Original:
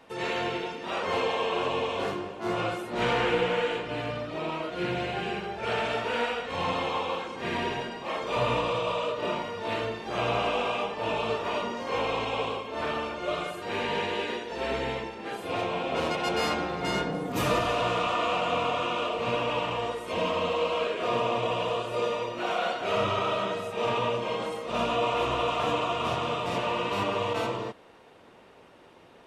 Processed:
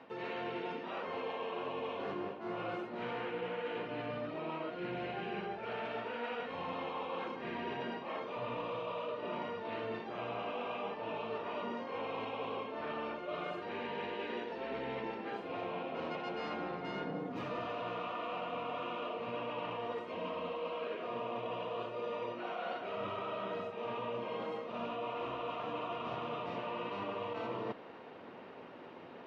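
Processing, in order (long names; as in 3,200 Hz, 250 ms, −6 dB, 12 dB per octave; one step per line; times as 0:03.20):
high-pass filter 140 Hz 12 dB per octave
parametric band 250 Hz +3.5 dB 0.25 octaves
notch filter 3,500 Hz, Q 28
reversed playback
downward compressor 8 to 1, threshold −40 dBFS, peak gain reduction 18.5 dB
reversed playback
high-frequency loss of the air 250 metres
level +4 dB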